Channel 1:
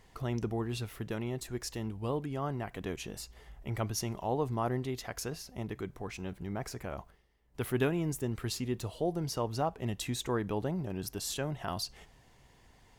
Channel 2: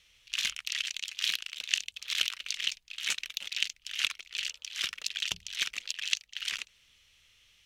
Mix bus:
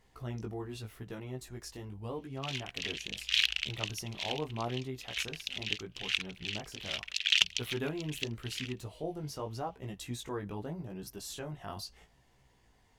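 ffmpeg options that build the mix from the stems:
-filter_complex "[0:a]flanger=delay=15:depth=5.1:speed=0.81,volume=-3dB,asplit=2[a][b];[1:a]equalizer=f=2.6k:w=0.51:g=12.5,adelay=2100,volume=-1.5dB[c];[b]apad=whole_len=430186[d];[c][d]sidechaincompress=threshold=-54dB:ratio=8:attack=12:release=478[e];[a][e]amix=inputs=2:normalize=0"

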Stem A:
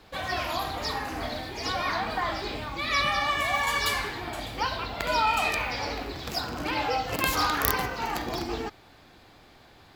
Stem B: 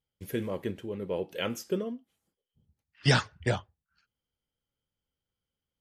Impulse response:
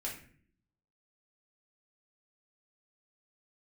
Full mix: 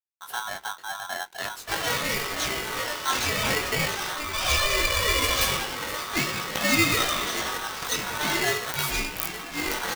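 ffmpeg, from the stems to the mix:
-filter_complex "[0:a]highshelf=f=11k:g=8,adelay=1550,volume=-5.5dB[a];[1:a]acompressor=threshold=-37dB:ratio=2,aeval=exprs='sgn(val(0))*max(abs(val(0))-0.001,0)':c=same,volume=-3.5dB[b];[a][b]amix=inputs=2:normalize=0,dynaudnorm=f=130:g=3:m=11dB,flanger=delay=16:depth=5.5:speed=0.45,aeval=exprs='val(0)*sgn(sin(2*PI*1200*n/s))':c=same"

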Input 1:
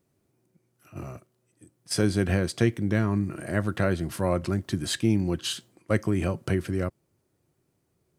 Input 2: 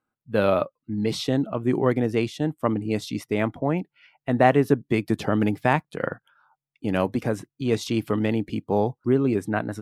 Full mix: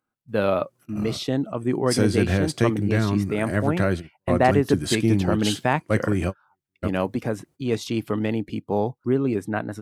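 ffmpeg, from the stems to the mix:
-filter_complex "[0:a]volume=2.5dB[a];[1:a]volume=-1dB,asplit=2[b][c];[c]apad=whole_len=360760[d];[a][d]sidechaingate=range=-60dB:threshold=-50dB:ratio=16:detection=peak[e];[e][b]amix=inputs=2:normalize=0"

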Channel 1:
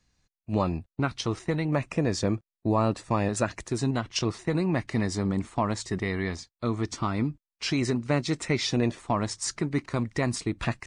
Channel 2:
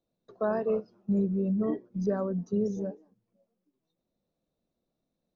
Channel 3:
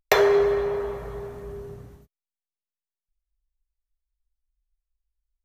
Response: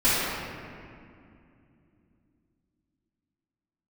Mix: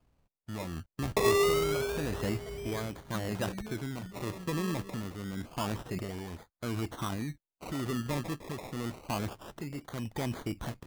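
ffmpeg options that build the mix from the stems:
-filter_complex "[0:a]asoftclip=type=hard:threshold=-19.5dB,alimiter=level_in=4dB:limit=-24dB:level=0:latency=1:release=21,volume=-4dB,tremolo=f=0.87:d=0.52,volume=2dB,asplit=2[a][b];[1:a]alimiter=limit=-21.5dB:level=0:latency=1,adelay=2050,volume=-14.5dB[c];[2:a]acrossover=split=450|3000[d][e][f];[e]acompressor=threshold=-37dB:ratio=2.5[g];[d][g][f]amix=inputs=3:normalize=0,adelay=1050,volume=-3.5dB[h];[b]apad=whole_len=326531[i];[c][i]sidechaingate=range=-33dB:threshold=-47dB:ratio=16:detection=peak[j];[a][j][h]amix=inputs=3:normalize=0,lowpass=4k,acrusher=samples=23:mix=1:aa=0.000001:lfo=1:lforange=13.8:lforate=0.27"

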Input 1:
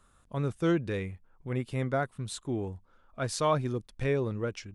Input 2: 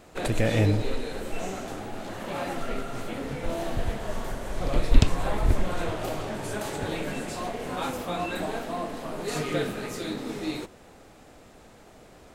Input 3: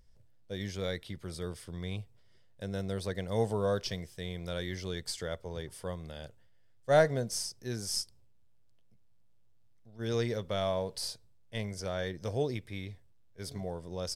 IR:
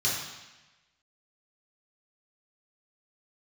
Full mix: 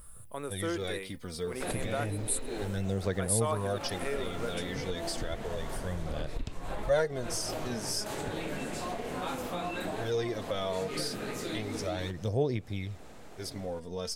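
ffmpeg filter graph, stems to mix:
-filter_complex "[0:a]highpass=390,aexciter=amount=12.3:drive=7.7:freq=8.9k,volume=1dB[a];[1:a]acompressor=threshold=-27dB:ratio=6,adelay=1450,volume=0dB[b];[2:a]aphaser=in_gain=1:out_gain=1:delay=4.5:decay=0.6:speed=0.32:type=sinusoidal,volume=2.5dB,asplit=2[c][d];[d]apad=whole_len=608373[e];[b][e]sidechaincompress=threshold=-32dB:ratio=8:attack=37:release=172[f];[a][f][c]amix=inputs=3:normalize=0,acompressor=threshold=-37dB:ratio=1.5"

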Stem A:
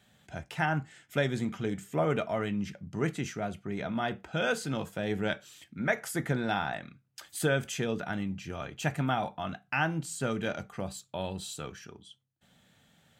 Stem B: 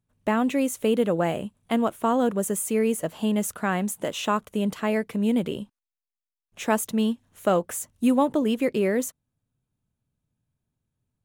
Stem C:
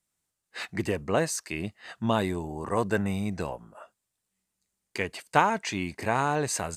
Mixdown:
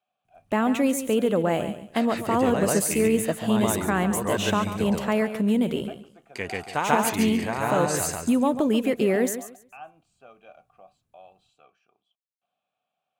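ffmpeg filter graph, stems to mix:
-filter_complex "[0:a]acrusher=bits=10:mix=0:aa=0.000001,asplit=3[a][b][c];[a]bandpass=f=730:t=q:w=8,volume=0dB[d];[b]bandpass=f=1.09k:t=q:w=8,volume=-6dB[e];[c]bandpass=f=2.44k:t=q:w=8,volume=-9dB[f];[d][e][f]amix=inputs=3:normalize=0,volume=-4.5dB,asplit=2[g][h];[1:a]alimiter=limit=-16dB:level=0:latency=1:release=91,adelay=250,volume=2dB,asplit=2[i][j];[j]volume=-11dB[k];[2:a]adelay=1400,volume=2dB,asplit=2[l][m];[m]volume=-4dB[n];[h]apad=whole_len=359964[o];[l][o]sidechaincompress=threshold=-47dB:ratio=5:attack=40:release=980[p];[k][n]amix=inputs=2:normalize=0,aecho=0:1:140|280|420|560:1|0.23|0.0529|0.0122[q];[g][i][p][q]amix=inputs=4:normalize=0"

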